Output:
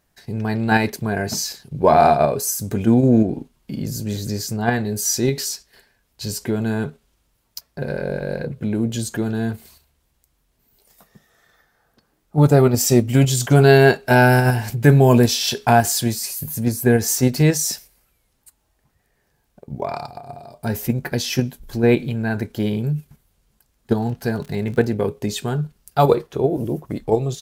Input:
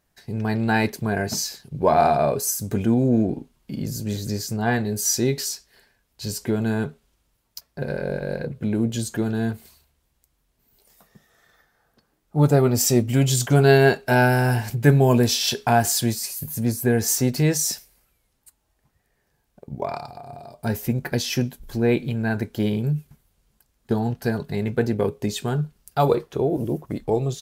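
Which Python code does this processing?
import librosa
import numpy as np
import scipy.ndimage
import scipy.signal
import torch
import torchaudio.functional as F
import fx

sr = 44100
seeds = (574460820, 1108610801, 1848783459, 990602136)

p1 = fx.level_steps(x, sr, step_db=19)
p2 = x + (p1 * 10.0 ** (-1.0 / 20.0))
y = fx.dmg_crackle(p2, sr, seeds[0], per_s=50.0, level_db=-30.0, at=(23.95, 24.91), fade=0.02)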